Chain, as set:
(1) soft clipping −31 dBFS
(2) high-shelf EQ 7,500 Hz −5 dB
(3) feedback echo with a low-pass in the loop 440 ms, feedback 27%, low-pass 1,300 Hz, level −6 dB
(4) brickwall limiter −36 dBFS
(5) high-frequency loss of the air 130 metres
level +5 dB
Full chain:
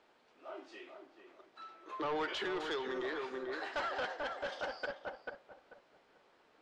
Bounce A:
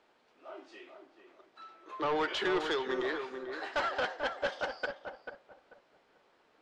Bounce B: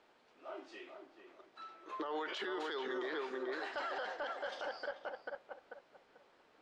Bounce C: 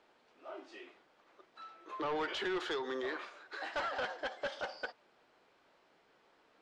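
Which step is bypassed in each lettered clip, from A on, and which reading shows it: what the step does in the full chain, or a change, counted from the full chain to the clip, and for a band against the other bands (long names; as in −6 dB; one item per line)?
4, average gain reduction 1.5 dB
1, distortion level −7 dB
3, change in momentary loudness spread −2 LU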